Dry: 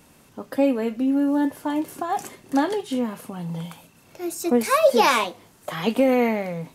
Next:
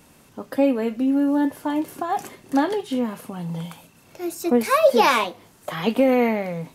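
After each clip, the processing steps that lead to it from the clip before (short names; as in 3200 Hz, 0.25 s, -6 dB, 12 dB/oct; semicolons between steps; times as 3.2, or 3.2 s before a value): dynamic EQ 7900 Hz, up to -5 dB, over -47 dBFS, Q 0.98; gain +1 dB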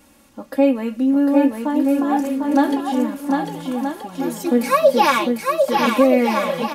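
comb 3.6 ms, depth 77%; on a send: bouncing-ball echo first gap 0.75 s, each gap 0.7×, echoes 5; on the sum: gain -1.5 dB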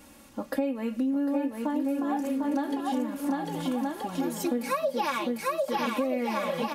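compressor 6:1, threshold -26 dBFS, peak gain reduction 16.5 dB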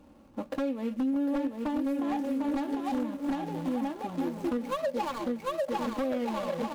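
median filter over 25 samples; wavefolder -22.5 dBFS; gain -1 dB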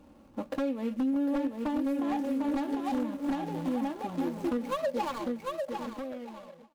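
ending faded out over 1.71 s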